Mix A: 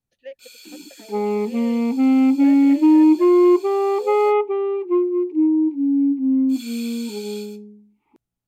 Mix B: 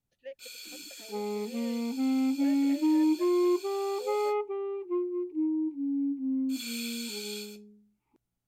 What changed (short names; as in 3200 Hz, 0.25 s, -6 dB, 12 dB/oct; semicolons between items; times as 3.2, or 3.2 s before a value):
speech -6.5 dB; second sound -12.0 dB